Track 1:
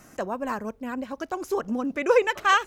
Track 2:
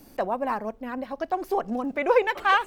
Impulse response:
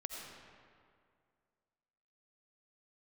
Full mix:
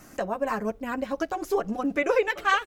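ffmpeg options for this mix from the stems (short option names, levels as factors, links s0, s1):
-filter_complex "[0:a]volume=1.06[s0];[1:a]equalizer=f=940:w=3.4:g=-13.5,volume=-1,adelay=8.1,volume=0.562,asplit=2[s1][s2];[s2]apad=whole_len=117342[s3];[s0][s3]sidechaincompress=threshold=0.0251:ratio=8:attack=5.7:release=1210[s4];[s4][s1]amix=inputs=2:normalize=0,dynaudnorm=f=110:g=5:m=1.58"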